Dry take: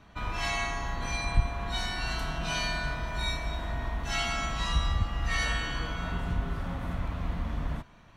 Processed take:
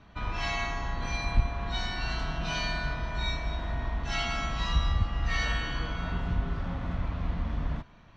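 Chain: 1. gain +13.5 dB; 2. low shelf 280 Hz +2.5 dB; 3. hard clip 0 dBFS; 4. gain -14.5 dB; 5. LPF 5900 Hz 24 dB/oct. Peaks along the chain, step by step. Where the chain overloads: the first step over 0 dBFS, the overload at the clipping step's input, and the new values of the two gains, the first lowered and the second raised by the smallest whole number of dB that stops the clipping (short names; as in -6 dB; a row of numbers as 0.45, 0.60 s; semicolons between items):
+2.0, +4.0, 0.0, -14.5, -14.5 dBFS; step 1, 4.0 dB; step 1 +9.5 dB, step 4 -10.5 dB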